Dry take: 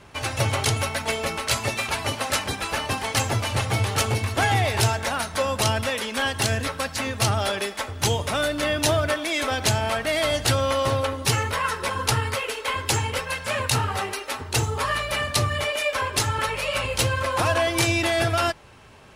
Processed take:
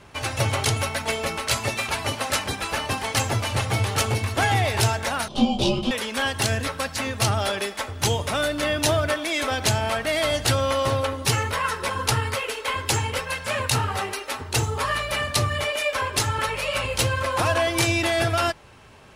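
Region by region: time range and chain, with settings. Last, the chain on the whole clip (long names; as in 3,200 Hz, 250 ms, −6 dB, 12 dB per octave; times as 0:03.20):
0:05.28–0:05.91: drawn EQ curve 120 Hz 0 dB, 190 Hz −9 dB, 300 Hz +13 dB, 440 Hz +9 dB, 1,100 Hz +4 dB, 2,200 Hz −17 dB, 3,400 Hz +10 dB, 5,000 Hz +2 dB, 12,000 Hz −14 dB + frequency shifter −300 Hz + micro pitch shift up and down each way 24 cents
whole clip: no processing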